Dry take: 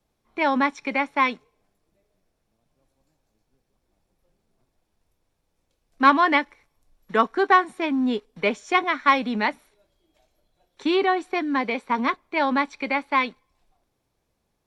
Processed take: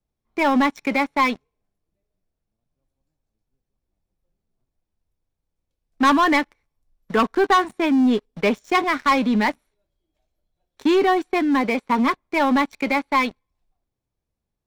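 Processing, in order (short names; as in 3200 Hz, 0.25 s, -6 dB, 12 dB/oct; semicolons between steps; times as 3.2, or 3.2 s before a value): low shelf 200 Hz +10 dB; sample leveller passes 3; gain -7.5 dB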